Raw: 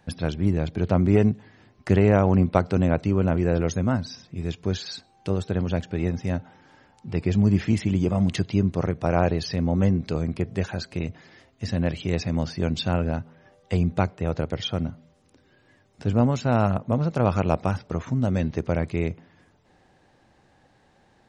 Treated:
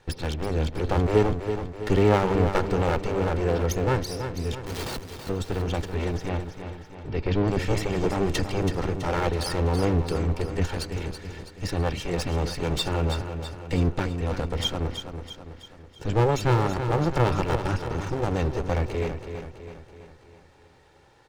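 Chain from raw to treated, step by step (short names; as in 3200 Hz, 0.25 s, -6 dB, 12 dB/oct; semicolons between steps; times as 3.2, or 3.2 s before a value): minimum comb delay 2.2 ms; 4.66–5.29 Schmitt trigger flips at -35.5 dBFS; 6.29–7.48 LPF 4600 Hz 24 dB/oct; feedback echo 0.328 s, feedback 51%, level -8.5 dB; gain +3.5 dB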